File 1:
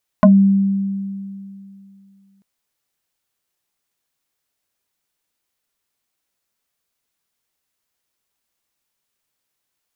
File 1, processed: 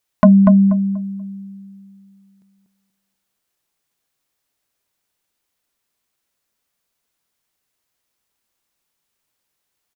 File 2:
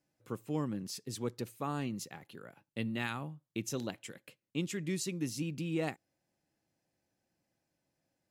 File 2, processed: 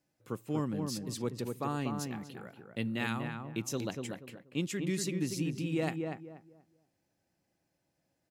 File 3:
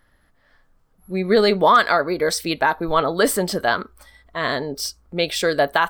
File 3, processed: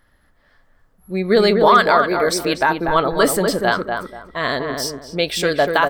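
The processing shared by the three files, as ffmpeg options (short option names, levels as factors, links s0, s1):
-filter_complex "[0:a]asplit=2[s0][s1];[s1]adelay=241,lowpass=f=1500:p=1,volume=0.631,asplit=2[s2][s3];[s3]adelay=241,lowpass=f=1500:p=1,volume=0.27,asplit=2[s4][s5];[s5]adelay=241,lowpass=f=1500:p=1,volume=0.27,asplit=2[s6][s7];[s7]adelay=241,lowpass=f=1500:p=1,volume=0.27[s8];[s0][s2][s4][s6][s8]amix=inputs=5:normalize=0,volume=1.19"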